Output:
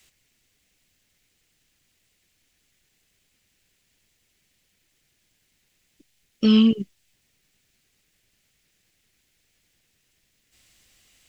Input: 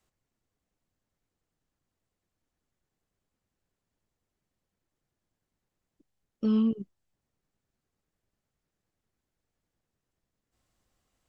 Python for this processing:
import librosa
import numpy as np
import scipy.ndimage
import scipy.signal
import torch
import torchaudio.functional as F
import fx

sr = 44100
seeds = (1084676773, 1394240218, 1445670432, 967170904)

y = fx.high_shelf_res(x, sr, hz=1600.0, db=11.5, q=1.5)
y = y * 10.0 ** (9.0 / 20.0)